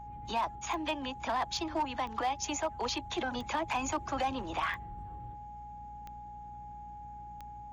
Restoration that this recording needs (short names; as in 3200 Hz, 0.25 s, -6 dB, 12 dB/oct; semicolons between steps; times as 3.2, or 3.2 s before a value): clip repair -25.5 dBFS; de-click; de-hum 59.3 Hz, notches 4; notch 830 Hz, Q 30